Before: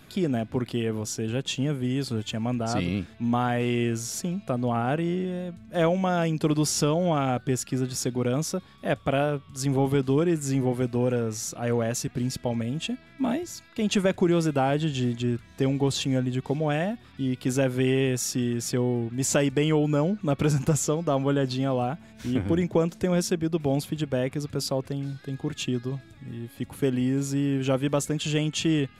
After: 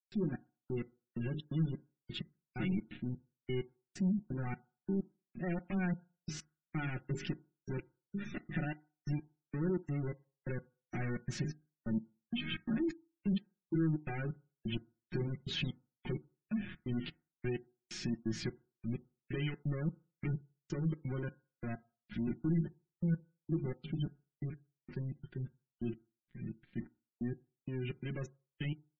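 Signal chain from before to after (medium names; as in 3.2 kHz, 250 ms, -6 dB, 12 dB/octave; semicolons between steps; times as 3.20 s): Doppler pass-by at 11.25 s, 19 m/s, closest 6.6 m; feedback echo behind a high-pass 137 ms, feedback 33%, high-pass 1.5 kHz, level -12 dB; compression 20:1, threshold -50 dBFS, peak gain reduction 29 dB; hum notches 50/100/150/200/250/300/350/400/450 Hz; trance gate ".xx...x...xx" 129 bpm -60 dB; waveshaping leveller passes 5; low-pass 2.8 kHz 12 dB/octave; comb 5.5 ms, depth 81%; FDN reverb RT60 0.37 s, low-frequency decay 0.85×, high-frequency decay 0.4×, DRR 15 dB; spectral gate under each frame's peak -25 dB strong; high-order bell 750 Hz -14.5 dB; trim +9.5 dB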